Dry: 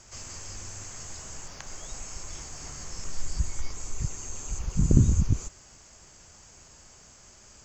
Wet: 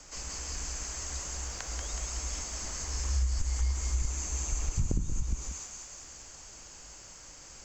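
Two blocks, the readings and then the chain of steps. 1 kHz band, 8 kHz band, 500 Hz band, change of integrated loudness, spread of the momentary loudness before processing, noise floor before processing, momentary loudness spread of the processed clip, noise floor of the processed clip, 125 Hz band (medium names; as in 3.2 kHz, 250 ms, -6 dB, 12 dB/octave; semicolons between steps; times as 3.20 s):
+1.5 dB, +2.5 dB, -4.0 dB, -3.0 dB, 27 LU, -53 dBFS, 15 LU, -50 dBFS, -6.0 dB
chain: frequency shift -71 Hz; on a send: thinning echo 186 ms, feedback 68%, high-pass 890 Hz, level -4 dB; on the sum: compression 12:1, threshold -26 dBFS, peak gain reduction 15.5 dB; trim +1.5 dB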